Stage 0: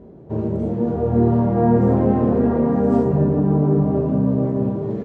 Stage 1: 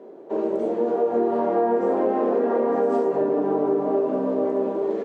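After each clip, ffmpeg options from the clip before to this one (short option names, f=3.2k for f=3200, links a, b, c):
-af "highpass=f=340:w=0.5412,highpass=f=340:w=1.3066,acompressor=threshold=-22dB:ratio=6,volume=4.5dB"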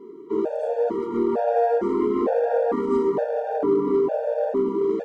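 -filter_complex "[0:a]asplit=2[a][b];[b]asoftclip=type=hard:threshold=-19.5dB,volume=-6.5dB[c];[a][c]amix=inputs=2:normalize=0,afftfilt=real='re*gt(sin(2*PI*1.1*pts/sr)*(1-2*mod(floor(b*sr/1024/470),2)),0)':imag='im*gt(sin(2*PI*1.1*pts/sr)*(1-2*mod(floor(b*sr/1024/470),2)),0)':win_size=1024:overlap=0.75"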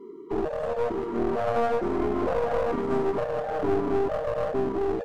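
-af "aeval=exprs='clip(val(0),-1,0.0376)':c=same,volume=-1.5dB"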